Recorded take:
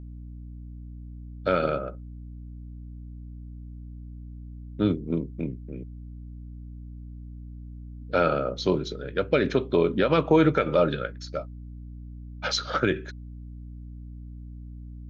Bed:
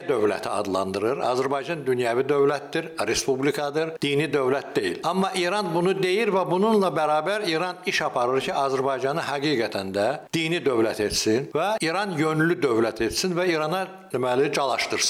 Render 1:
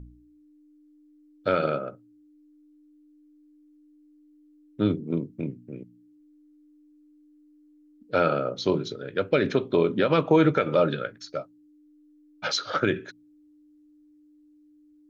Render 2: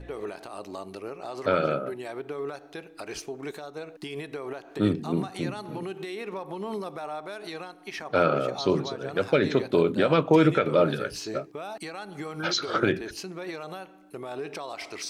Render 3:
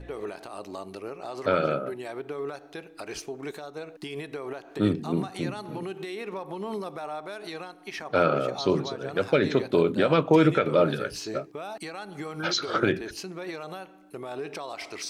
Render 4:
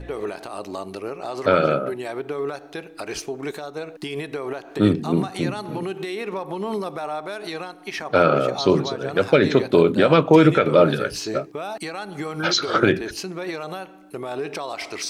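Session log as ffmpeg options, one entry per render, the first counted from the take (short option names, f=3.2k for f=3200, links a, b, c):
-af "bandreject=f=60:t=h:w=4,bandreject=f=120:t=h:w=4,bandreject=f=180:t=h:w=4,bandreject=f=240:t=h:w=4"
-filter_complex "[1:a]volume=-13.5dB[a];[0:a][a]amix=inputs=2:normalize=0"
-af anull
-af "volume=6.5dB,alimiter=limit=-3dB:level=0:latency=1"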